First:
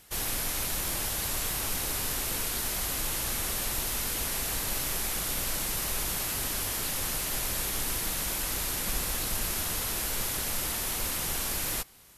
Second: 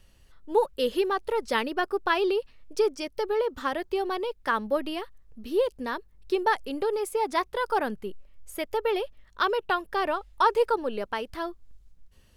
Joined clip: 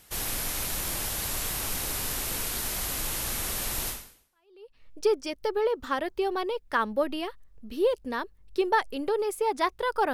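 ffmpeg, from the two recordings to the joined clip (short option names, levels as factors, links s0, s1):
-filter_complex "[0:a]apad=whole_dur=10.13,atrim=end=10.13,atrim=end=4.83,asetpts=PTS-STARTPTS[s0];[1:a]atrim=start=1.63:end=7.87,asetpts=PTS-STARTPTS[s1];[s0][s1]acrossfade=d=0.94:c1=exp:c2=exp"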